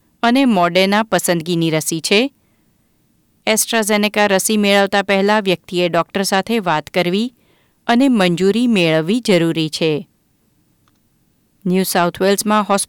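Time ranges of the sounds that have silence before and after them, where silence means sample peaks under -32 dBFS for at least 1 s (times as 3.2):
3.47–10.02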